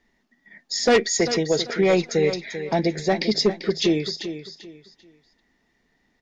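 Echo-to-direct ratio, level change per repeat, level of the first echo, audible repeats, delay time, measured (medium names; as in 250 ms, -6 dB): -10.5 dB, -11.5 dB, -11.0 dB, 3, 392 ms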